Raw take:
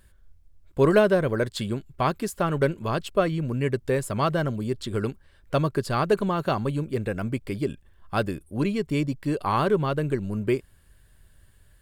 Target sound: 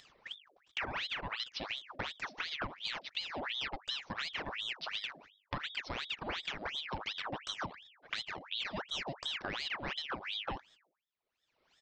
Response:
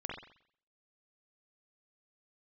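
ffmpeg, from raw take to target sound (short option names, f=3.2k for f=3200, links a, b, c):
-af "agate=range=-56dB:threshold=-44dB:ratio=16:detection=peak,highpass=84,lowshelf=f=130:g=-9,bandreject=f=50:t=h:w=6,bandreject=f=100:t=h:w=6,bandreject=f=150:t=h:w=6,bandreject=f=200:t=h:w=6,bandreject=f=250:t=h:w=6,aecho=1:1:1.7:0.34,acompressor=mode=upward:threshold=-23dB:ratio=2.5,alimiter=limit=-15.5dB:level=0:latency=1:release=201,acompressor=threshold=-41dB:ratio=6,aresample=11025,aresample=44100,aeval=exprs='val(0)*sin(2*PI*2000*n/s+2000*0.8/2.8*sin(2*PI*2.8*n/s))':c=same,volume=6dB"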